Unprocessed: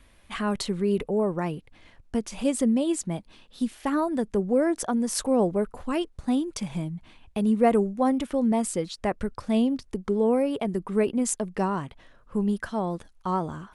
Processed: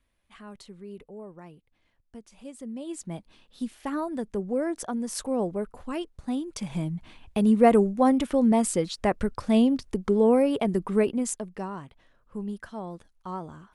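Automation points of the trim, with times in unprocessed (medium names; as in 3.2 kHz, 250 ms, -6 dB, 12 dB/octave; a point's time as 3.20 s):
2.58 s -17.5 dB
3.14 s -5 dB
6.43 s -5 dB
6.91 s +2.5 dB
10.88 s +2.5 dB
11.63 s -8.5 dB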